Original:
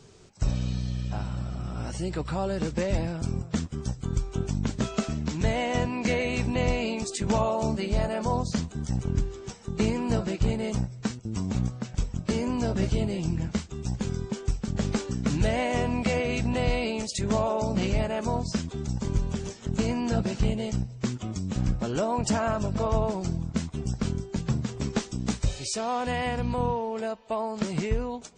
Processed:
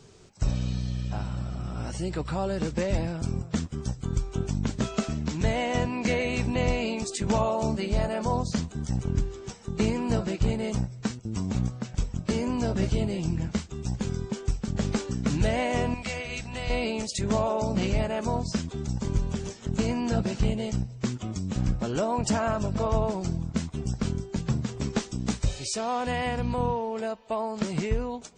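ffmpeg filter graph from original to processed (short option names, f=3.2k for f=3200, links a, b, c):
-filter_complex "[0:a]asettb=1/sr,asplit=3[a][b][c];[a]atrim=end=15.944[d];[b]atrim=start=15.94:end=16.7,asetpts=PTS-STARTPTS,afade=t=in:d=0.004:c=qsin,afade=t=out:st=0.756:d=0.004:c=qsin,equalizer=f=290:w=0.32:g=-11.5,bandreject=f=60:t=h:w=6,bandreject=f=120:t=h:w=6,bandreject=f=180:t=h:w=6,bandreject=f=240:t=h:w=6,bandreject=f=300:t=h:w=6,bandreject=f=360:t=h:w=6,bandreject=f=420:t=h:w=6,bandreject=f=480:t=h:w=6[e];[c]atrim=start=16.696[f];[d][e]acrossfade=d=0.004:c1=hsin:c2=qsin[g];[g][f]acrossfade=d=0.004:c1=qsin:c2=hsin"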